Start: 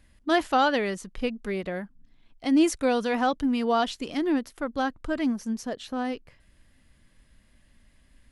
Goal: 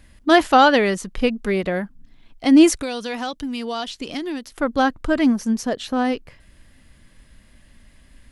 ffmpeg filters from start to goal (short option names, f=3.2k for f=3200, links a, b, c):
-filter_complex "[0:a]asettb=1/sr,asplit=3[a][b][c];[a]atrim=end=2.814[d];[b]atrim=start=2.81:end=4.52,asetpts=PTS-STARTPTS,afade=t=in:d=0.004:c=qsin,afade=t=out:st=1.706:d=0.004:c=qsin,acrossover=split=2800|6000[e][f][g];[e]acompressor=threshold=-37dB:ratio=4[h];[f]acompressor=threshold=-42dB:ratio=4[i];[g]acompressor=threshold=-57dB:ratio=4[j];[h][i][j]amix=inputs=3:normalize=0[k];[c]atrim=start=4.516[l];[d][k]acrossfade=d=0.004:c1=hsin:c2=qsin[m];[m][l]acrossfade=d=0.004:c1=qsin:c2=hsin,volume=9dB"